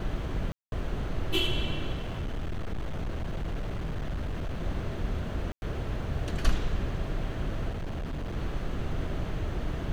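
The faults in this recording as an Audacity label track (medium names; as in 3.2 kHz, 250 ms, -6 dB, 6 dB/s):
0.520000	0.720000	dropout 201 ms
1.940000	4.630000	clipped -28.5 dBFS
5.520000	5.620000	dropout 101 ms
7.690000	8.370000	clipped -30.5 dBFS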